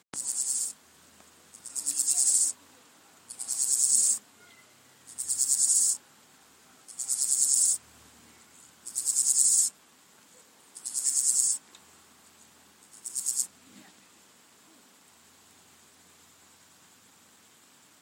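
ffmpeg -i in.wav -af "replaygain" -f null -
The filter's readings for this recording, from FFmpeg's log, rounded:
track_gain = +15.1 dB
track_peak = 0.297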